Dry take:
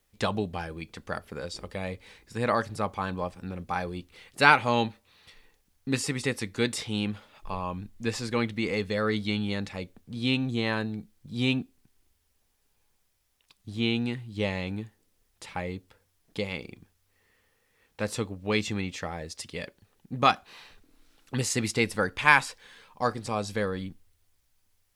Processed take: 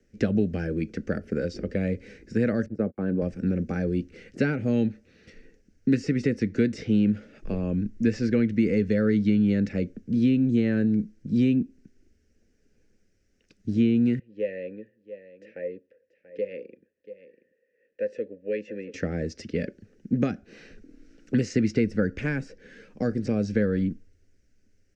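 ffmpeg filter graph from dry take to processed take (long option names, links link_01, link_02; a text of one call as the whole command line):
ffmpeg -i in.wav -filter_complex "[0:a]asettb=1/sr,asplit=3[link_01][link_02][link_03];[link_01]atrim=end=2.664[link_04];[link_02]atrim=start=2.66:end=3.22,asetpts=PTS-STARTPTS,afade=type=in:duration=0.004:curve=qsin,afade=type=out:start_time=0.556:duration=0.004:curve=qsin,agate=range=-41dB:threshold=-38dB:ratio=16:release=100:detection=peak,bandpass=frequency=420:width_type=q:width=0.56,acompressor=mode=upward:threshold=-37dB:ratio=2.5:attack=3.2:release=140:knee=2.83:detection=peak[link_05];[link_03]atrim=start=3.216[link_06];[link_04][link_05]acrossfade=duration=0.004:curve1=hsin:curve2=qsin[link_07];[link_07][link_06]acrossfade=duration=0.004:curve1=qsin:curve2=hsin,asettb=1/sr,asplit=3[link_08][link_09][link_10];[link_08]atrim=end=14.194[link_11];[link_09]atrim=start=14.19:end=18.94,asetpts=PTS-STARTPTS,afade=type=in:duration=0.004:curve=qsin,afade=type=out:start_time=4.746:duration=0.004:curve=qsin,asplit=3[link_12][link_13][link_14];[link_12]bandpass=frequency=530:width_type=q:width=8,volume=0dB[link_15];[link_13]bandpass=frequency=1840:width_type=q:width=8,volume=-6dB[link_16];[link_14]bandpass=frequency=2480:width_type=q:width=8,volume=-9dB[link_17];[link_15][link_16][link_17]amix=inputs=3:normalize=0,aecho=1:1:685:0.178,atrim=end_sample=209475[link_18];[link_10]atrim=start=18.936[link_19];[link_11][link_18]acrossfade=duration=0.004:curve1=hsin:curve2=qsin[link_20];[link_20][link_19]acrossfade=duration=0.004:curve1=qsin:curve2=hsin,equalizer=frequency=2900:width=3.9:gain=5.5,acrossover=split=160|700|5800[link_21][link_22][link_23][link_24];[link_21]acompressor=threshold=-37dB:ratio=4[link_25];[link_22]acompressor=threshold=-38dB:ratio=4[link_26];[link_23]acompressor=threshold=-36dB:ratio=4[link_27];[link_24]acompressor=threshold=-59dB:ratio=4[link_28];[link_25][link_26][link_27][link_28]amix=inputs=4:normalize=0,firequalizer=gain_entry='entry(130,0);entry(210,9);entry(510,3);entry(970,-26);entry(1500,-3);entry(2200,-7);entry(3300,-20);entry(5700,-5);entry(11000,-29)':delay=0.05:min_phase=1,volume=7.5dB" out.wav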